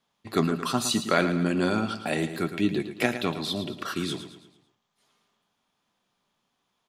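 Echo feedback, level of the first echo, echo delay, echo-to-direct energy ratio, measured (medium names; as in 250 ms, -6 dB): 44%, -10.5 dB, 111 ms, -9.5 dB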